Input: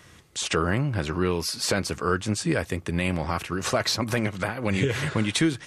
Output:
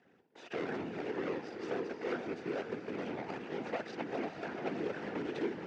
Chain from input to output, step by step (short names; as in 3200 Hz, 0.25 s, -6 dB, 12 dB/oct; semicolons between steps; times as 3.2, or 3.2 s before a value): median filter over 41 samples; high shelf 3300 Hz -11 dB; diffused feedback echo 0.47 s, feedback 41%, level -6 dB; whisperiser; limiter -19 dBFS, peak gain reduction 8 dB; speaker cabinet 490–6100 Hz, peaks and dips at 590 Hz -9 dB, 1100 Hz -7 dB, 4000 Hz -4 dB; gain +1 dB